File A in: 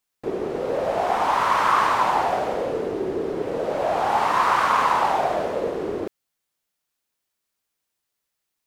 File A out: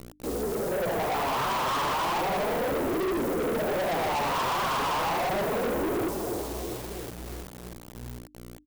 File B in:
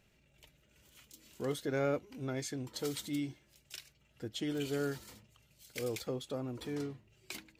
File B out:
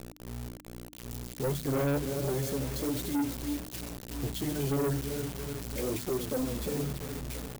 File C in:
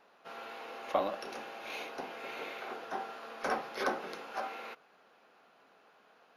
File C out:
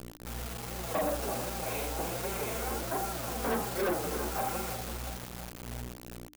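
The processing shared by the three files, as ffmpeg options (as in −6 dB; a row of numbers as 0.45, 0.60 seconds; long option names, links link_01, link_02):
-af "flanger=delay=2.7:depth=5.4:regen=13:speed=0.33:shape=triangular,dynaudnorm=framelen=180:gausssize=9:maxgain=9.5dB,lowpass=frequency=1200:poles=1,aecho=1:1:338|676|1014|1352|1690|2028:0.251|0.138|0.076|0.0418|0.023|0.0126,tremolo=f=25:d=0.333,aeval=exprs='val(0)+0.00447*(sin(2*PI*60*n/s)+sin(2*PI*2*60*n/s)/2+sin(2*PI*3*60*n/s)/3+sin(2*PI*4*60*n/s)/4+sin(2*PI*5*60*n/s)/5)':channel_layout=same,flanger=delay=5:depth=9.2:regen=6:speed=1.3:shape=sinusoidal,acrusher=bits=7:mix=0:aa=0.000001,lowshelf=frequency=430:gain=9.5,bandreject=frequency=50:width_type=h:width=6,bandreject=frequency=100:width_type=h:width=6,bandreject=frequency=150:width_type=h:width=6,bandreject=frequency=200:width_type=h:width=6,bandreject=frequency=250:width_type=h:width=6,bandreject=frequency=300:width_type=h:width=6,crystalizer=i=2.5:c=0,asoftclip=type=tanh:threshold=-29.5dB,volume=3.5dB"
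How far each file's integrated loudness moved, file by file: −6.0, +5.5, +4.5 LU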